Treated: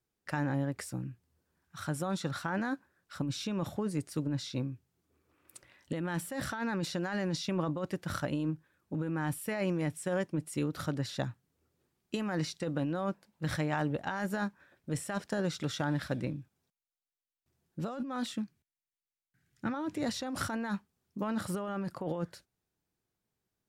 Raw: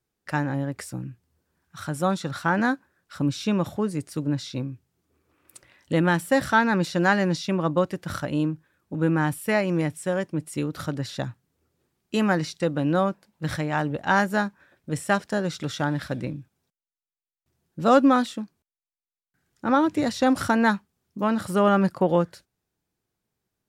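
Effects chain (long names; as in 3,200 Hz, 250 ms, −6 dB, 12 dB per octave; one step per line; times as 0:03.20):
0:18.32–0:19.74: octave-band graphic EQ 125/500/1,000/2,000 Hz +8/−5/−6/+5 dB
compressor whose output falls as the input rises −25 dBFS, ratio −1
level −7.5 dB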